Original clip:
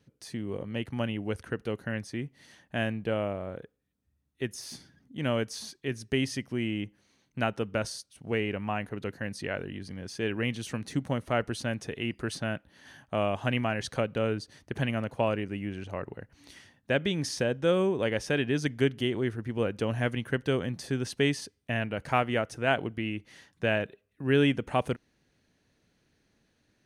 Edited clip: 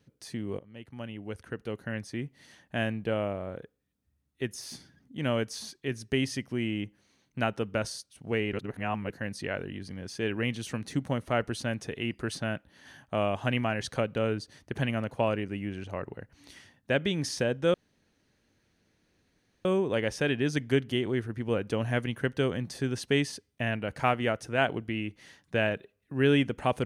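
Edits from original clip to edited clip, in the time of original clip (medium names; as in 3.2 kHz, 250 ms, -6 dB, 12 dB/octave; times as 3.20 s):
0.59–2.24 s: fade in, from -18 dB
8.53–9.10 s: reverse
17.74 s: insert room tone 1.91 s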